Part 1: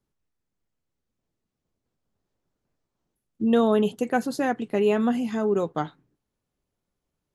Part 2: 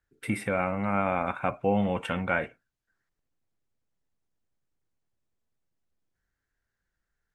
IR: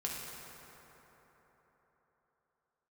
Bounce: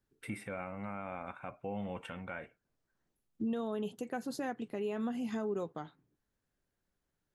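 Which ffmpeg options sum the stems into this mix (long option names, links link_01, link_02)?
-filter_complex "[0:a]acompressor=threshold=-24dB:ratio=2.5,volume=-4dB[link_01];[1:a]volume=-8.5dB[link_02];[link_01][link_02]amix=inputs=2:normalize=0,alimiter=level_in=4dB:limit=-24dB:level=0:latency=1:release=477,volume=-4dB"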